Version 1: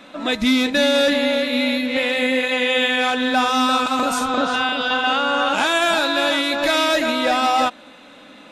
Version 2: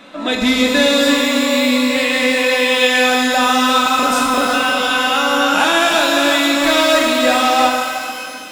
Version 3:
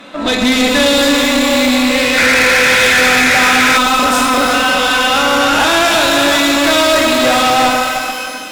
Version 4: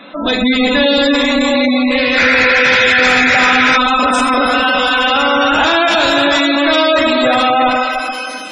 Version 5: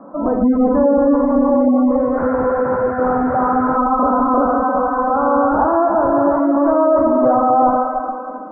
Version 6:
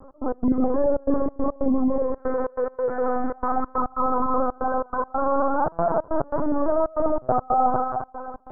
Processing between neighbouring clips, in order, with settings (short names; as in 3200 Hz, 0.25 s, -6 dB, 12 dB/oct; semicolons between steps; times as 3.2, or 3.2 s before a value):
shimmer reverb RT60 2.1 s, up +12 st, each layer -8 dB, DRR 1 dB; gain +2 dB
painted sound noise, 2.17–3.78, 1300–2600 Hz -13 dBFS; tube stage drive 16 dB, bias 0.65; gain +8.5 dB
spectral gate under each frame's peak -20 dB strong
steep low-pass 1200 Hz 48 dB/oct
LPC vocoder at 8 kHz pitch kept; step gate "x.x.xxxxx.x" 140 bpm -24 dB; gain -6.5 dB